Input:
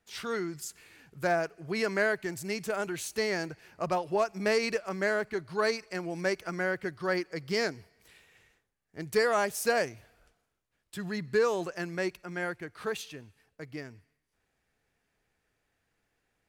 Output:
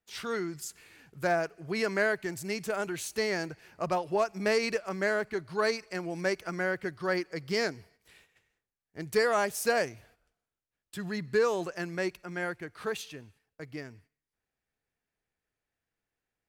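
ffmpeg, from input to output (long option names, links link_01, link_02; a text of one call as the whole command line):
ffmpeg -i in.wav -af "agate=range=-11dB:threshold=-60dB:ratio=16:detection=peak" out.wav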